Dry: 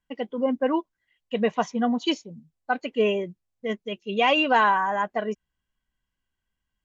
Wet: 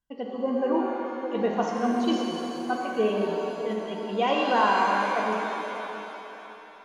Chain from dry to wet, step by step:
parametric band 2,300 Hz −9.5 dB 0.75 octaves
delay with a band-pass on its return 607 ms, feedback 32%, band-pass 510 Hz, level −10 dB
reverb with rising layers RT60 2.9 s, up +7 semitones, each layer −8 dB, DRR −0.5 dB
level −4 dB

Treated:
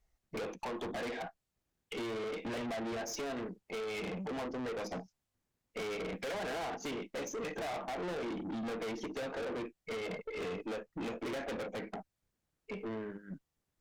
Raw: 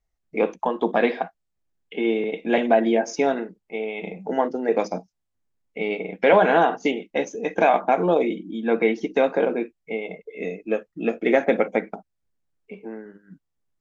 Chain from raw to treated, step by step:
downward compressor 3 to 1, threshold −28 dBFS, peak gain reduction 12.5 dB
tube saturation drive 40 dB, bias 0.25
level +3.5 dB

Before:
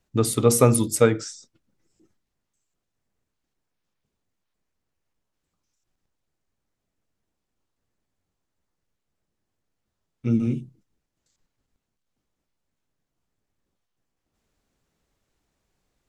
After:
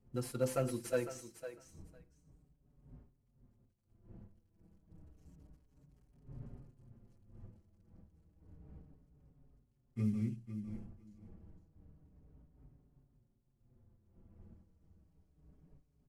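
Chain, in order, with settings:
variable-slope delta modulation 64 kbit/s
source passing by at 0:06.22, 30 m/s, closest 26 metres
wind on the microphone 140 Hz −59 dBFS
notch filter 3,600 Hz, Q 8.7
on a send: repeating echo 504 ms, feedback 16%, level −11 dB
on the sum: barber-pole flanger 5.2 ms −0.3 Hz
level +2.5 dB

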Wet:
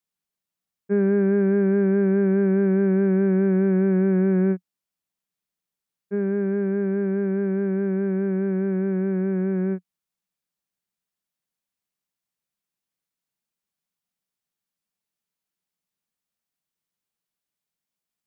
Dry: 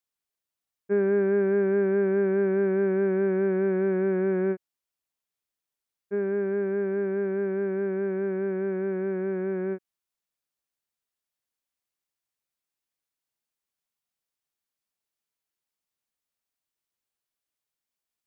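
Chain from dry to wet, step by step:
parametric band 180 Hz +11.5 dB 0.58 octaves

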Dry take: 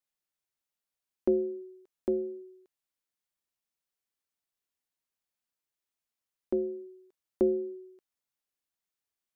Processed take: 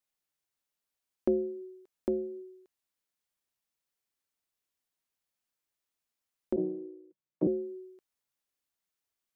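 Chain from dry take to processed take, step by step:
0:06.56–0:07.47: channel vocoder with a chord as carrier major triad, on B2
dynamic equaliser 420 Hz, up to −4 dB, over −37 dBFS, Q 1.5
level +1.5 dB

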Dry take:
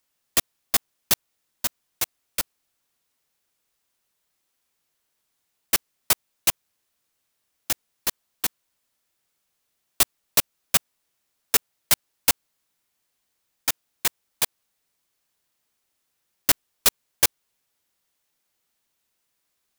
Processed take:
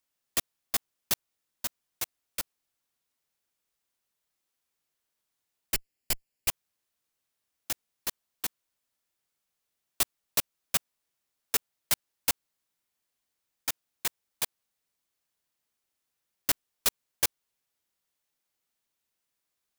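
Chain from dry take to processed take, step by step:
0:05.74–0:06.48: lower of the sound and its delayed copy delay 0.41 ms
level −7.5 dB

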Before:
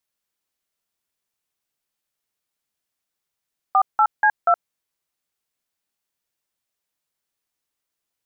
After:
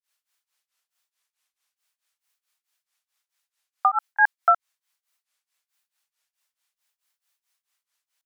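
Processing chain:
high-pass filter 1,000 Hz 12 dB per octave
brickwall limiter −16 dBFS, peak gain reduction 4.5 dB
granular cloud 257 ms, grains 4.6 per second
level +8.5 dB

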